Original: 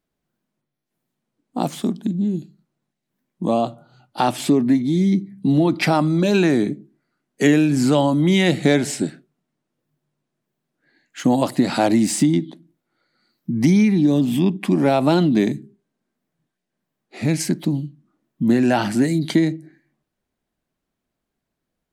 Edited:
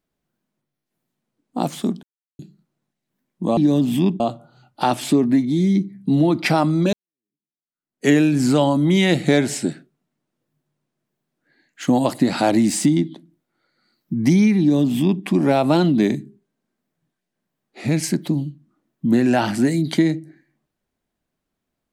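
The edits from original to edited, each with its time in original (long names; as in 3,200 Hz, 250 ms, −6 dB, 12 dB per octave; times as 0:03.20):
0:02.03–0:02.39: silence
0:06.30–0:07.45: fade in exponential
0:13.97–0:14.60: duplicate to 0:03.57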